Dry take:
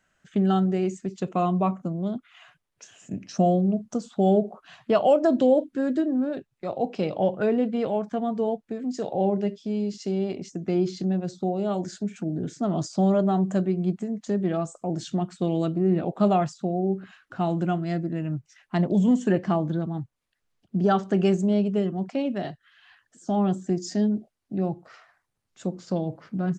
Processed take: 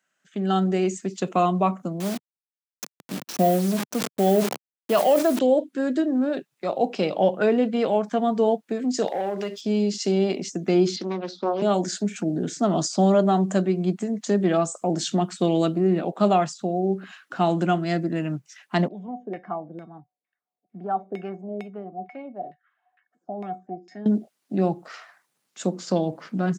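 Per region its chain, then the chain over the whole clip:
2–5.39 level-crossing sampler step -35 dBFS + sustainer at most 84 dB/s
9.07–9.61 HPF 610 Hz 6 dB/oct + compressor 3:1, threshold -33 dBFS + sample leveller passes 1
10.96–11.62 Chebyshev band-pass 210–4500 Hz, order 3 + low shelf 350 Hz -6 dB + Doppler distortion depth 0.44 ms
18.88–24.06 LFO low-pass saw down 2.2 Hz 430–2300 Hz + resonator 730 Hz, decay 0.18 s, harmonics odd, mix 90%
whole clip: HPF 160 Hz 24 dB/oct; tilt +1.5 dB/oct; AGC gain up to 15.5 dB; gain -7 dB

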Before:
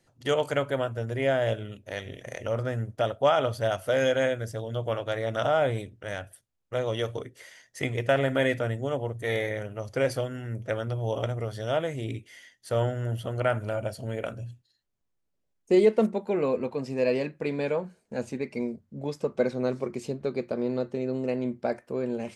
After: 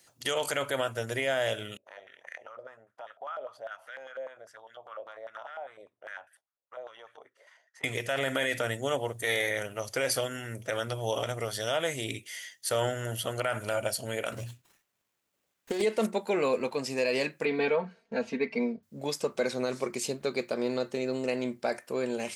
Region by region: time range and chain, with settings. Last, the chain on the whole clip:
1.77–7.84 compressor 4:1, threshold -33 dBFS + stepped band-pass 10 Hz 570–1700 Hz
14.32–15.82 HPF 50 Hz + negative-ratio compressor -23 dBFS, ratio -0.5 + running maximum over 9 samples
17.45–18.83 air absorption 280 m + comb 4.4 ms, depth 96%
whole clip: tilt +3.5 dB/oct; limiter -21.5 dBFS; gain +3.5 dB

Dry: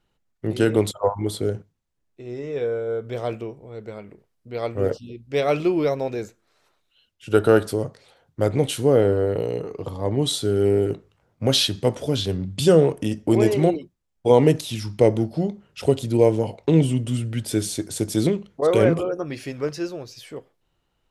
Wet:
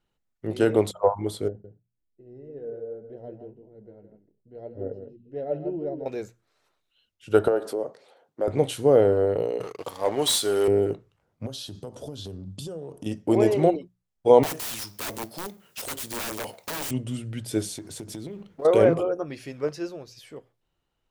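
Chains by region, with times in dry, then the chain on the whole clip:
1.48–6.06 echo 0.161 s -8 dB + flange 1.8 Hz, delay 2.7 ms, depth 4.5 ms, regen +57% + running mean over 38 samples
7.48–8.48 bell 600 Hz +8.5 dB 2.2 oct + compressor 3:1, threshold -23 dBFS + Chebyshev high-pass 290 Hz
9.6–10.68 HPF 1400 Hz 6 dB/oct + high shelf 7100 Hz +5.5 dB + sample leveller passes 3
11.46–13.06 bell 2100 Hz -14 dB + compressor 20:1, threshold -26 dBFS
14.43–16.91 G.711 law mismatch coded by mu + RIAA curve recording + wrapped overs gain 21 dB
17.77–18.65 G.711 law mismatch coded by mu + high shelf 5000 Hz -5.5 dB + compressor 10:1, threshold -26 dBFS
whole clip: dynamic EQ 670 Hz, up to +8 dB, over -31 dBFS, Q 0.75; notches 60/120/180 Hz; gain -6 dB

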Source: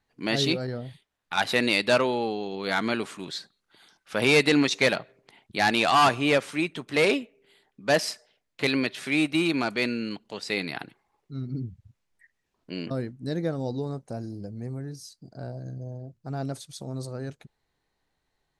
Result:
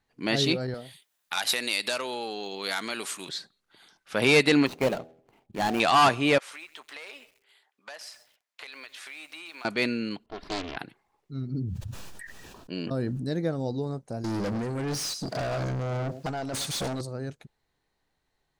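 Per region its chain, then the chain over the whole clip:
0.74–3.29 compressor 5:1, threshold -26 dBFS + RIAA curve recording
4.66–5.8 median filter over 25 samples + de-hum 81.51 Hz, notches 10
6.38–9.65 Chebyshev high-pass 920 Hz + compressor 10:1, threshold -39 dBFS + lo-fi delay 0.131 s, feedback 55%, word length 8-bit, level -14.5 dB
10.26–10.77 minimum comb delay 2.9 ms + air absorption 400 m + Doppler distortion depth 0.87 ms
11.47–13.27 notch 2100 Hz, Q 5 + sustainer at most 20 dB/s
14.24–17.01 echo 0.11 s -20.5 dB + negative-ratio compressor -37 dBFS, ratio -0.5 + overdrive pedal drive 34 dB, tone 5400 Hz, clips at -22.5 dBFS
whole clip: dry

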